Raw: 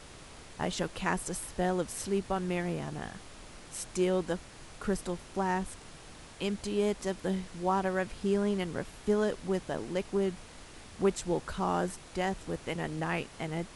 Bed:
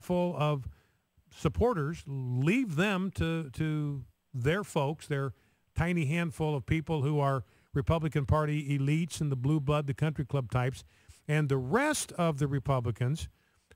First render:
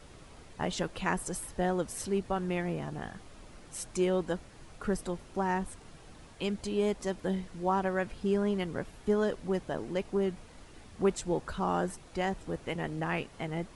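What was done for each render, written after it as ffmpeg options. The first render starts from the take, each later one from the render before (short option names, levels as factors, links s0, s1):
-af "afftdn=nr=7:nf=-50"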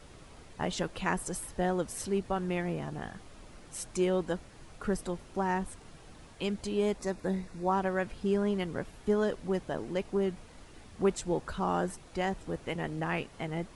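-filter_complex "[0:a]asettb=1/sr,asplit=3[s0][s1][s2];[s0]atrim=end=6.984[s3];[s1]atrim=start=6.98:end=7.72,asetpts=PTS-STARTPTS,afade=t=in:d=0.004:c=qsin,afade=t=out:st=0.736:d=0.004:c=qsin,asuperstop=centerf=3100:order=4:qfactor=5.5[s4];[s2]atrim=start=7.716[s5];[s3][s4]acrossfade=d=0.004:c1=hsin:c2=qsin[s6];[s6][s5]acrossfade=d=0.004:c1=qsin:c2=hsin"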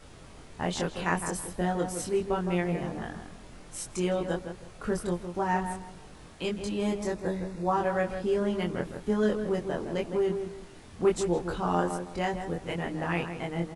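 -filter_complex "[0:a]asplit=2[s0][s1];[s1]adelay=23,volume=0.794[s2];[s0][s2]amix=inputs=2:normalize=0,asplit=2[s3][s4];[s4]adelay=161,lowpass=f=1600:p=1,volume=0.447,asplit=2[s5][s6];[s6]adelay=161,lowpass=f=1600:p=1,volume=0.29,asplit=2[s7][s8];[s8]adelay=161,lowpass=f=1600:p=1,volume=0.29,asplit=2[s9][s10];[s10]adelay=161,lowpass=f=1600:p=1,volume=0.29[s11];[s3][s5][s7][s9][s11]amix=inputs=5:normalize=0"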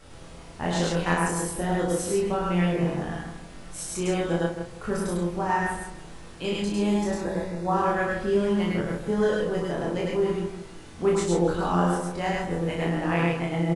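-filter_complex "[0:a]asplit=2[s0][s1];[s1]adelay=35,volume=0.708[s2];[s0][s2]amix=inputs=2:normalize=0,aecho=1:1:101|107:0.708|0.668"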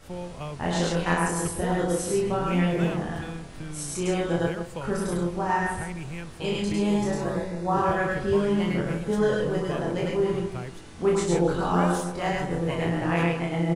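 -filter_complex "[1:a]volume=0.447[s0];[0:a][s0]amix=inputs=2:normalize=0"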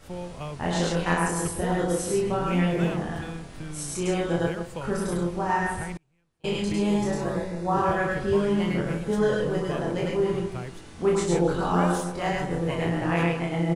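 -filter_complex "[0:a]asettb=1/sr,asplit=3[s0][s1][s2];[s0]atrim=end=5.974[s3];[s1]atrim=start=5.97:end=6.53,asetpts=PTS-STARTPTS,afade=t=in:d=0.004:c=qsin,afade=t=out:st=0.556:d=0.004:c=qsin,agate=range=0.02:threshold=0.0316:ratio=16:release=100:detection=peak[s4];[s2]atrim=start=6.526[s5];[s3][s4]acrossfade=d=0.004:c1=hsin:c2=qsin[s6];[s6][s5]acrossfade=d=0.004:c1=qsin:c2=hsin"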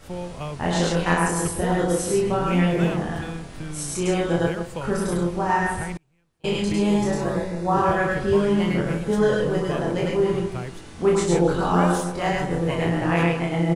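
-af "volume=1.5"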